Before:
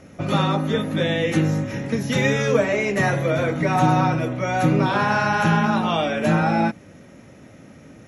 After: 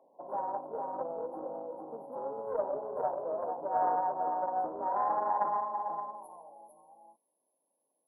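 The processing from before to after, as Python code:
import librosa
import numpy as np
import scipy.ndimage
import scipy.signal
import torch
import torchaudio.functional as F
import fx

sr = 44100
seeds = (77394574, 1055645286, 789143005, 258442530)

p1 = scipy.signal.sosfilt(scipy.signal.butter(2, 400.0, 'highpass', fs=sr, output='sos'), x)
p2 = fx.filter_sweep_bandpass(p1, sr, from_hz=880.0, to_hz=6700.0, start_s=5.44, end_s=6.21, q=1.6)
p3 = fx.brickwall_bandstop(p2, sr, low_hz=1100.0, high_hz=9100.0)
p4 = p3 + fx.echo_single(p3, sr, ms=450, db=-4.0, dry=0)
p5 = fx.doppler_dist(p4, sr, depth_ms=0.17)
y = F.gain(torch.from_numpy(p5), -6.5).numpy()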